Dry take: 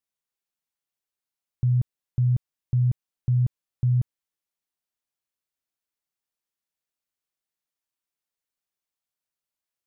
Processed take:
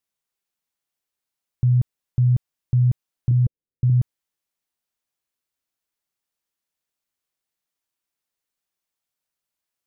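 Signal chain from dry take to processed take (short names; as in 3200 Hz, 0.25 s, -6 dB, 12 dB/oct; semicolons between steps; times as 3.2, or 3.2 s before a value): 3.31–3.9 elliptic low-pass 510 Hz; gain +4 dB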